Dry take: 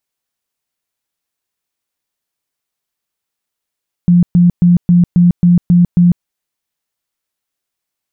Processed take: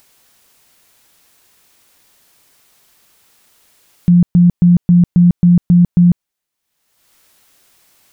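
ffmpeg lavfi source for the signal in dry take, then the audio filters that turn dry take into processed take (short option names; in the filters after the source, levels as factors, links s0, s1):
-f lavfi -i "aevalsrc='0.596*sin(2*PI*175*mod(t,0.27))*lt(mod(t,0.27),26/175)':d=2.16:s=44100"
-af "acompressor=mode=upward:threshold=0.0251:ratio=2.5"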